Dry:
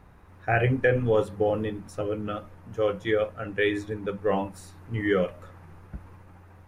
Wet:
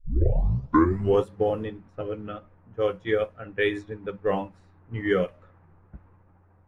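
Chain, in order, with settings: tape start-up on the opening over 1.24 s; level-controlled noise filter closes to 1.3 kHz, open at -20 dBFS; upward expansion 1.5:1, over -39 dBFS; trim +2.5 dB

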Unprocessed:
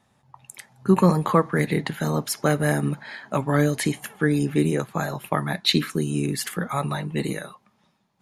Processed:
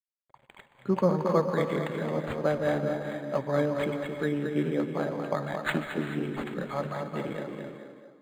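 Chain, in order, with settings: high-pass 140 Hz 6 dB/octave; bit crusher 9-bit; small resonant body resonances 560/2200/3400 Hz, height 9 dB, ringing for 25 ms; on a send: tape echo 223 ms, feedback 45%, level -4 dB, low-pass 2 kHz; on the sum: gated-style reverb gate 460 ms rising, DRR 8.5 dB; decimation joined by straight lines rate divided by 8×; trim -8 dB

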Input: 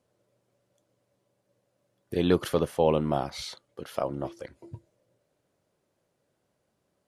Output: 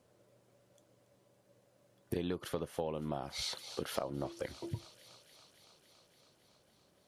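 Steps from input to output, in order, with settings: feedback echo behind a high-pass 281 ms, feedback 76%, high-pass 2.8 kHz, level -15 dB; compression 16:1, threshold -38 dBFS, peak gain reduction 22 dB; trim +5 dB

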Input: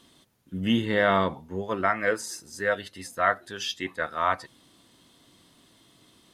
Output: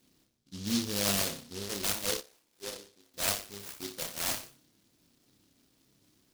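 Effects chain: median filter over 9 samples; on a send: flutter echo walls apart 5.1 m, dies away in 0.39 s; 2.21–3.14 s: on the sum: auto-wah 400–1200 Hz, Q 2.4, down, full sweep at -28 dBFS; delay time shaken by noise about 4.4 kHz, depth 0.32 ms; trim -9 dB

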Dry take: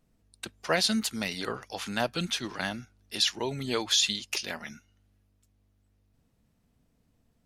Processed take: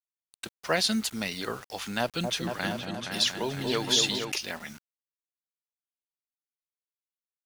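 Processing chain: bit crusher 8-bit; 2.00–4.32 s: delay with an opening low-pass 235 ms, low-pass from 750 Hz, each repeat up 2 oct, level -3 dB

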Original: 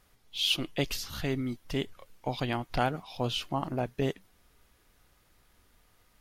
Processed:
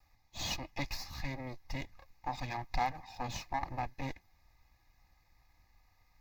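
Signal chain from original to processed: comb filter that takes the minimum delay 2.4 ms; treble shelf 4 kHz -6.5 dB; static phaser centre 2.1 kHz, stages 8; trim +1 dB

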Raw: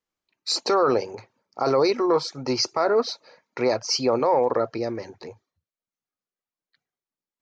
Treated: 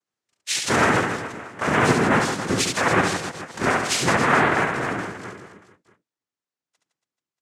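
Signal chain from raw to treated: noise-vocoded speech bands 3; reverse bouncing-ball echo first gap 70 ms, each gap 1.3×, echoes 5

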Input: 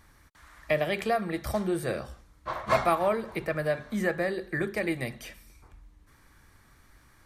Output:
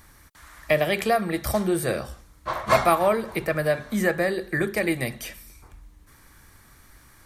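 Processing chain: treble shelf 7.2 kHz +9 dB; trim +5 dB

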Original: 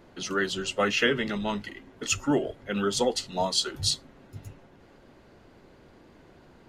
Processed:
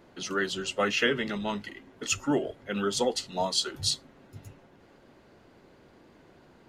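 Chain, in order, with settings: bass shelf 68 Hz -8.5 dB; trim -1.5 dB

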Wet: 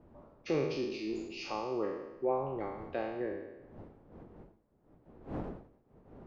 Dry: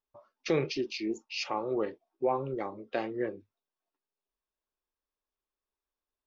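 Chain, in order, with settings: spectral sustain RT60 1.05 s; wind noise 430 Hz -45 dBFS; treble shelf 2.2 kHz -10 dB; endings held to a fixed fall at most 110 dB/s; trim -5 dB

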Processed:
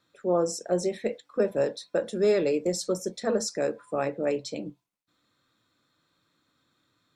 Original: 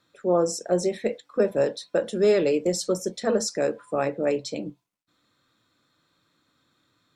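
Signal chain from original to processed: 1.67–3.84 s: band-stop 3 kHz, Q 8.8; trim -3 dB

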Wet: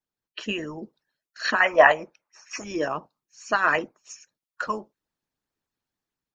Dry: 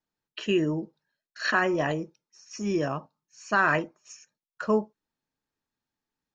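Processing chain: harmonic-percussive split harmonic -17 dB; 1.60–2.64 s: high-order bell 1.2 kHz +13.5 dB 2.6 oct; level rider gain up to 5 dB; trim +1 dB

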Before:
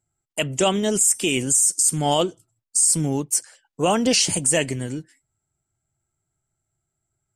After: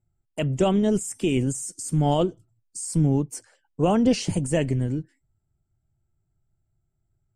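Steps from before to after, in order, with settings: tilt EQ -3.5 dB/octave; trim -5 dB; AAC 192 kbps 48 kHz

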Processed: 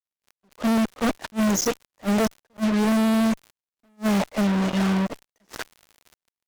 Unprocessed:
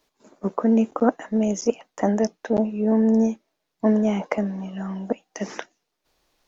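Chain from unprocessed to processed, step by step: fuzz box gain 41 dB, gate -35 dBFS; crackle 89 per s -30 dBFS; attacks held to a fixed rise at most 440 dB/s; trim -5.5 dB

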